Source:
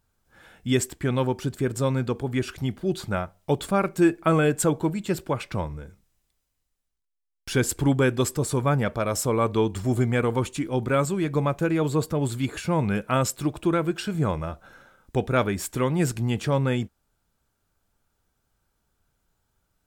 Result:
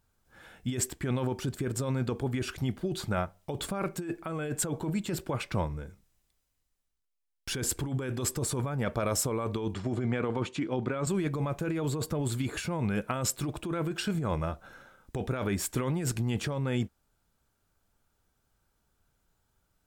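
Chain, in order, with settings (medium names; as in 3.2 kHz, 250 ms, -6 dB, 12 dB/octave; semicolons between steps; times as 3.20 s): 9.74–11.07 s: band-pass 130–4400 Hz; compressor with a negative ratio -26 dBFS, ratio -1; trim -4 dB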